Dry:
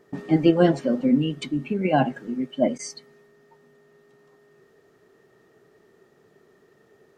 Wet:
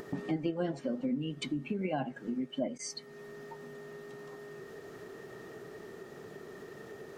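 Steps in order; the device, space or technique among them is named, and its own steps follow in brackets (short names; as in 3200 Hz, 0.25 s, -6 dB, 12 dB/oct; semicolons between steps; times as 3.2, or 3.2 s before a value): upward and downward compression (upward compressor, threshold -36 dBFS; compressor 4:1, threshold -33 dBFS, peak gain reduction 17.5 dB)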